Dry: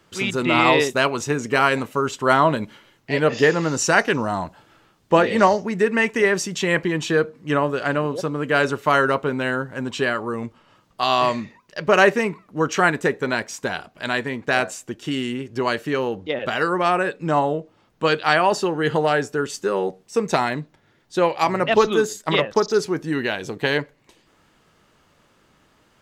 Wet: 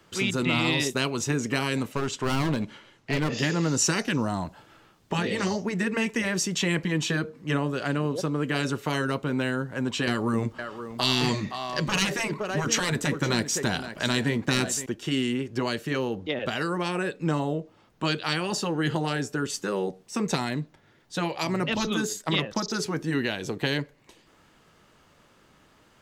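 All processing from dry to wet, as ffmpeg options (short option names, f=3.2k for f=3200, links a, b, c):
-filter_complex "[0:a]asettb=1/sr,asplit=3[a][b][c];[a]atrim=end=1.924[d];[b]atrim=start=1.92:end=3.3,asetpts=PTS-STARTPTS,afade=t=in:d=0.004:c=qsin,afade=t=out:st=1.376:d=0.004:c=qsin,lowpass=8.9k,aeval=exprs='clip(val(0),-1,0.0708)':c=same[e];[c]atrim=start=3.296[f];[d][e]acrossfade=d=0.004:c1=hsin:c2=qsin[g];[g][f]acrossfade=d=0.004:c1=qsin:c2=hsin,asettb=1/sr,asplit=3[h][i][j];[h]atrim=end=10.074[k];[i]atrim=start=10.07:end=14.86,asetpts=PTS-STARTPTS,afade=t=in:d=0.004:c=qsin,afade=t=out:st=4.786:d=0.004:c=qsin,equalizer=f=2.5k:t=o:w=0.4:g=-3,acontrast=70,aecho=1:1:515:0.141,atrim=end_sample=211239[l];[j]atrim=start=14.856[m];[k][l]acrossfade=d=0.004:c1=hsin:c2=qsin[n];[n][m]acrossfade=d=0.004:c1=qsin:c2=hsin,afftfilt=real='re*lt(hypot(re,im),0.794)':imag='im*lt(hypot(re,im),0.794)':win_size=1024:overlap=0.75,acrossover=split=340|3000[o][p][q];[p]acompressor=threshold=-30dB:ratio=6[r];[o][r][q]amix=inputs=3:normalize=0"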